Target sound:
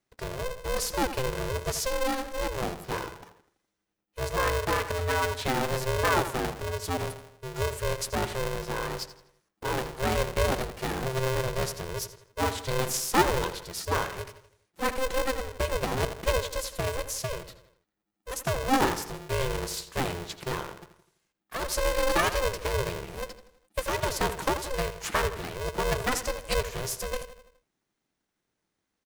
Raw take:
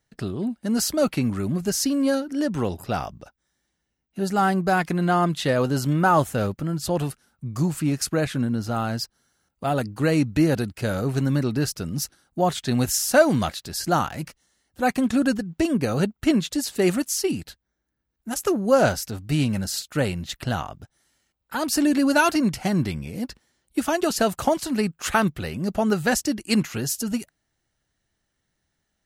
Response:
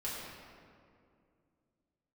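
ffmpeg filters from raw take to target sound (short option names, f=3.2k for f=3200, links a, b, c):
-filter_complex "[0:a]asettb=1/sr,asplit=3[a][b][c];[a]atrim=end=16.754[d];[b]atrim=start=16.75:end=18.31,asetpts=PTS-STARTPTS,afade=t=in:d=0.004:c=qsin,afade=t=out:st=1.556:d=0.004:c=qsin,acrossover=split=220[e][f];[f]acompressor=threshold=-23dB:ratio=6[g];[e][g]amix=inputs=2:normalize=0[h];[c]atrim=start=18.306[i];[d][h]acrossfade=d=0.004:c1=hsin:c2=qsin[j];[j][i]acrossfade=d=0.004:c1=qsin:c2=hsin,asplit=2[k][l];[l]adelay=83,lowpass=f=4k:p=1,volume=-11dB,asplit=2[m][n];[n]adelay=83,lowpass=f=4k:p=1,volume=0.5,asplit=2[o][p];[p]adelay=83,lowpass=f=4k:p=1,volume=0.5,asplit=2[q][r];[r]adelay=83,lowpass=f=4k:p=1,volume=0.5,asplit=2[s][t];[t]adelay=83,lowpass=f=4k:p=1,volume=0.5[u];[k][m][o][q][s][u]amix=inputs=6:normalize=0,aeval=exprs='val(0)*sgn(sin(2*PI*260*n/s))':c=same,volume=-6.5dB"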